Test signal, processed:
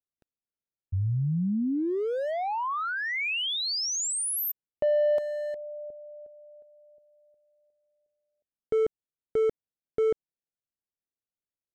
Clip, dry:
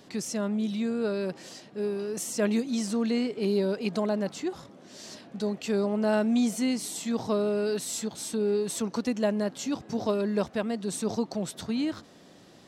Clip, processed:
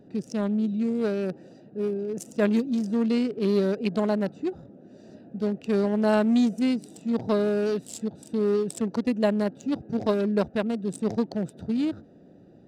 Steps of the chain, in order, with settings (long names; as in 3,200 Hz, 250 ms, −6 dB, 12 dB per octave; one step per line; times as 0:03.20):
adaptive Wiener filter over 41 samples
level +4 dB